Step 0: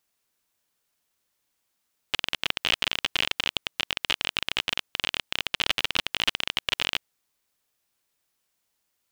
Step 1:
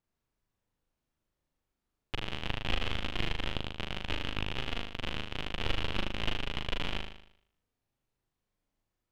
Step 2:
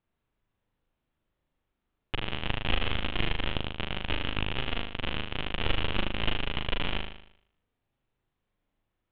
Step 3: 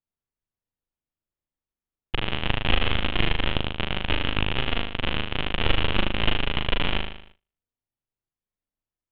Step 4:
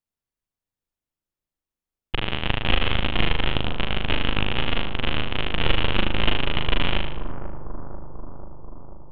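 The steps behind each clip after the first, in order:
tilt -4 dB/oct; flutter echo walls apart 6.6 m, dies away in 0.67 s; gain -7.5 dB
steep low-pass 3700 Hz 48 dB/oct; gain +4 dB
gate with hold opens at -39 dBFS; gain +6 dB
analogue delay 0.489 s, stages 4096, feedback 70%, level -10 dB; gain +1 dB

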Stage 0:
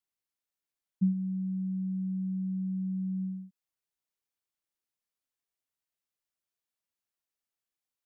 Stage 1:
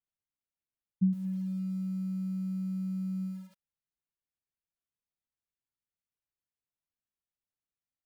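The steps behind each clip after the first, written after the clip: tone controls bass +11 dB, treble -12 dB; lo-fi delay 0.114 s, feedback 35%, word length 7-bit, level -13 dB; gain -8 dB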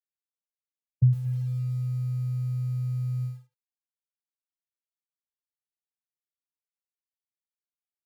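expander -32 dBFS; frequency shift -62 Hz; gain +7 dB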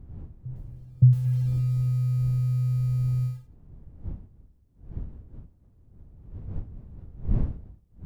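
wind noise 87 Hz -40 dBFS; reverse echo 0.57 s -21.5 dB; gain +4 dB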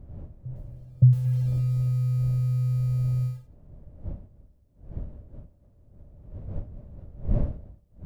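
bell 590 Hz +13 dB 0.34 oct

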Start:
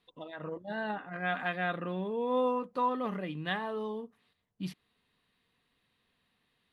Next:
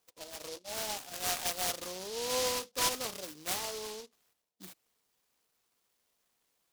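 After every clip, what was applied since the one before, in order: HPF 530 Hz 12 dB/oct; noise-modulated delay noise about 4500 Hz, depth 0.2 ms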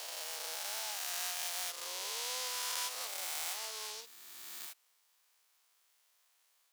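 spectral swells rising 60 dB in 2.62 s; HPF 870 Hz 12 dB/oct; compressor 3:1, threshold -40 dBFS, peak gain reduction 12.5 dB; gain +1.5 dB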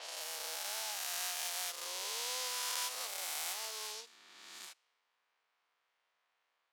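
low-pass opened by the level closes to 2200 Hz, open at -38.5 dBFS

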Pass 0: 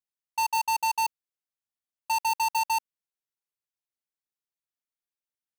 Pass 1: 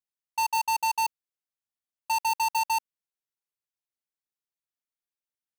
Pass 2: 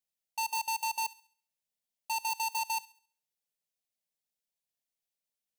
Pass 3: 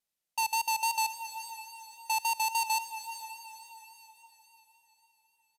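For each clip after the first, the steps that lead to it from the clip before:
nothing audible
limiter -30 dBFS, peak gain reduction 6 dB; fixed phaser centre 330 Hz, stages 6; thin delay 68 ms, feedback 39%, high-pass 1400 Hz, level -18 dB; gain +3.5 dB
downsampling 32000 Hz; diffused feedback echo 0.461 s, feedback 46%, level -11 dB; vibrato 3.6 Hz 32 cents; gain +3.5 dB

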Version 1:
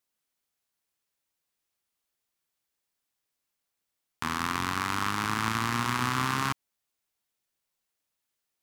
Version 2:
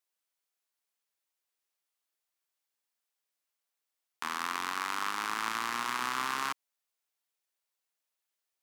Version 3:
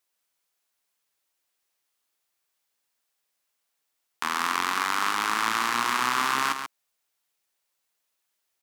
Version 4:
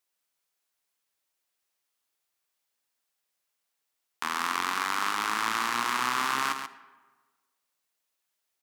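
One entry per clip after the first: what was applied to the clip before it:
HPF 430 Hz 12 dB/oct; gain -3.5 dB
echo 0.137 s -8 dB; gain +7.5 dB
digital reverb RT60 1.4 s, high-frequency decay 0.6×, pre-delay 20 ms, DRR 15.5 dB; gain -3 dB

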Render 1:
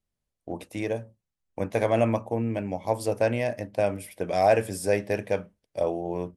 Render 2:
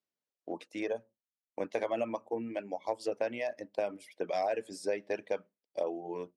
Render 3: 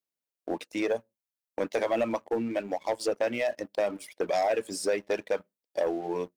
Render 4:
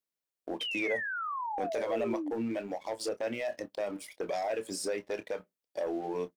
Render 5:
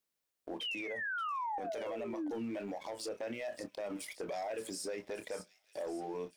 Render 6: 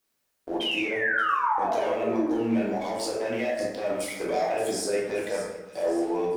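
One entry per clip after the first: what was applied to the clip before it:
reverb removal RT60 1.2 s; Chebyshev band-pass 320–5400 Hz, order 2; compressor 6:1, threshold -25 dBFS, peak gain reduction 9 dB; gain -3 dB
high shelf 7400 Hz +8 dB; sample leveller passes 2
limiter -25.5 dBFS, peak gain reduction 7.5 dB; painted sound fall, 0.6–2.31, 280–3200 Hz -34 dBFS; doubler 27 ms -12.5 dB; gain -1.5 dB
compressor, threshold -34 dBFS, peak gain reduction 7.5 dB; limiter -37.5 dBFS, peak gain reduction 11 dB; thin delay 0.576 s, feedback 56%, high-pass 4000 Hz, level -10 dB; gain +4.5 dB
plate-style reverb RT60 1.2 s, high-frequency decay 0.45×, DRR -4 dB; gain +7 dB

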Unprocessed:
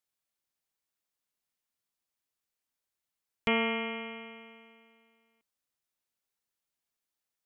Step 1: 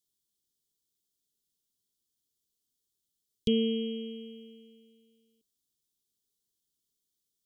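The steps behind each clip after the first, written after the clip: Chebyshev band-stop 440–3200 Hz, order 4; bell 1700 Hz -2.5 dB 1.6 oct; gain +6 dB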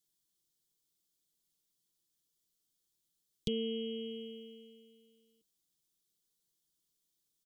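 comb 6.1 ms, depth 53%; compressor 2:1, threshold -38 dBFS, peak gain reduction 8.5 dB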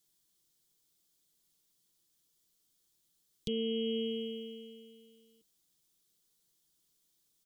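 limiter -32.5 dBFS, peak gain reduction 10 dB; gain +6.5 dB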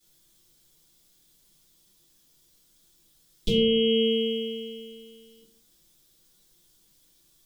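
shoebox room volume 40 m³, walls mixed, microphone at 2.4 m; gain +1.5 dB

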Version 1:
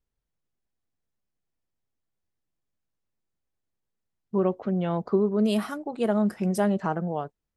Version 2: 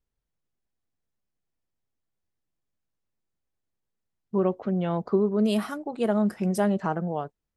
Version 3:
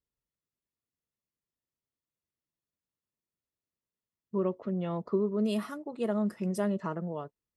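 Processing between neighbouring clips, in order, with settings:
nothing audible
notch comb 770 Hz; gain -5.5 dB

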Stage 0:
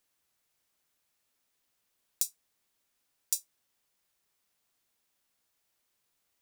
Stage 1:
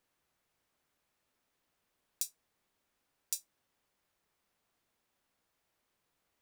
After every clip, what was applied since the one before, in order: high shelf 2900 Hz -11.5 dB; gain +4.5 dB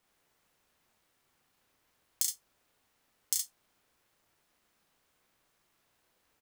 loudspeakers at several distances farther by 11 m -2 dB, 23 m -3 dB; ring modulator 510 Hz; gain +6.5 dB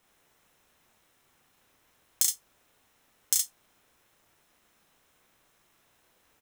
notch 4600 Hz, Q 9; in parallel at -9.5 dB: wrapped overs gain 17.5 dB; on the sum: gain +4.5 dB

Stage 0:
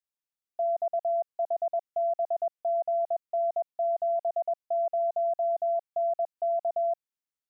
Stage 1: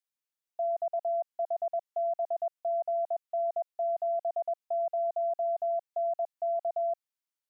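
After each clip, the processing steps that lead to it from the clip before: HPF 620 Hz 6 dB/oct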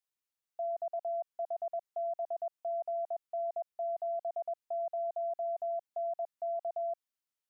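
limiter -29.5 dBFS, peak gain reduction 3.5 dB; gain -1.5 dB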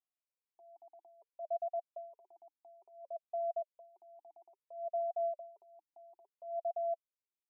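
vowel sweep a-u 0.59 Hz; gain +1.5 dB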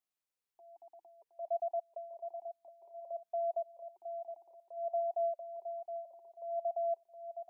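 feedback echo 0.717 s, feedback 28%, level -8.5 dB; gain +1.5 dB

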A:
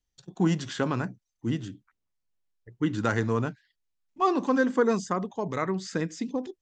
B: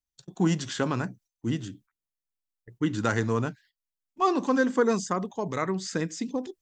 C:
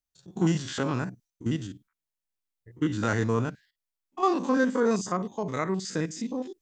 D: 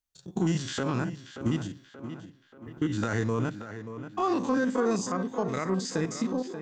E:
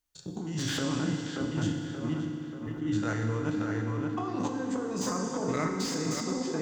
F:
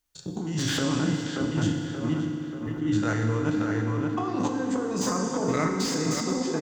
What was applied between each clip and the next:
gate -54 dBFS, range -12 dB; high shelf 6700 Hz +10 dB
stepped spectrum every 50 ms; gain +1 dB
transient shaper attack +6 dB, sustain +1 dB; limiter -18 dBFS, peak gain reduction 11 dB; tape echo 0.581 s, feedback 53%, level -9 dB, low-pass 3200 Hz
negative-ratio compressor -33 dBFS, ratio -1; FDN reverb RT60 2.7 s, high-frequency decay 0.95×, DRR 3 dB; slew limiter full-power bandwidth 110 Hz
echo 0.457 s -22.5 dB; gain +4.5 dB

